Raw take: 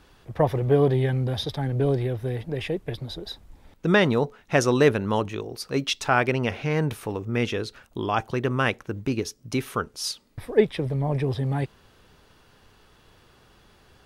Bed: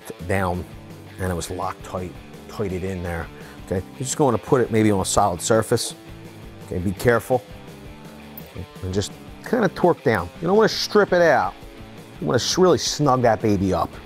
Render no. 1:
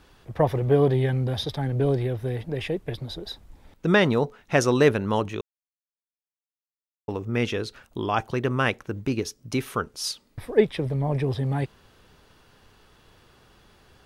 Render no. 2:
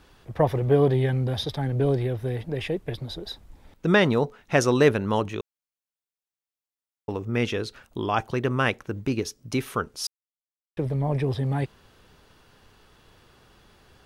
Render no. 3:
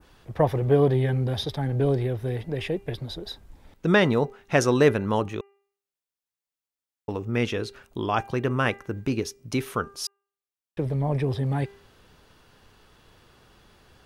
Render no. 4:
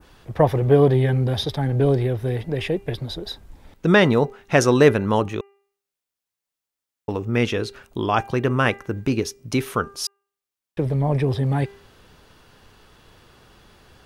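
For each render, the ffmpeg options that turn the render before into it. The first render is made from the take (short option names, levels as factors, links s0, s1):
-filter_complex "[0:a]asplit=3[s0][s1][s2];[s0]atrim=end=5.41,asetpts=PTS-STARTPTS,afade=t=out:st=5.406:d=0.004:c=hsin[s3];[s1]atrim=start=5.41:end=7.08,asetpts=PTS-STARTPTS,volume=0[s4];[s2]atrim=start=7.08,asetpts=PTS-STARTPTS,afade=t=in:d=0.004:c=hsin[s5];[s3][s4][s5]concat=n=3:v=0:a=1"
-filter_complex "[0:a]asplit=3[s0][s1][s2];[s0]atrim=end=10.07,asetpts=PTS-STARTPTS,afade=t=out:st=10.066:d=0.004:c=hsin[s3];[s1]atrim=start=10.07:end=10.77,asetpts=PTS-STARTPTS,volume=0[s4];[s2]atrim=start=10.77,asetpts=PTS-STARTPTS,afade=t=in:d=0.004:c=hsin[s5];[s3][s4][s5]concat=n=3:v=0:a=1"
-af "bandreject=f=398.3:t=h:w=4,bandreject=f=796.6:t=h:w=4,bandreject=f=1194.9:t=h:w=4,bandreject=f=1593.2:t=h:w=4,bandreject=f=1991.5:t=h:w=4,bandreject=f=2389.8:t=h:w=4,bandreject=f=2788.1:t=h:w=4,adynamicequalizer=threshold=0.00794:dfrequency=3800:dqfactor=0.74:tfrequency=3800:tqfactor=0.74:attack=5:release=100:ratio=0.375:range=2:mode=cutabove:tftype=bell"
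-af "volume=1.68,alimiter=limit=0.708:level=0:latency=1"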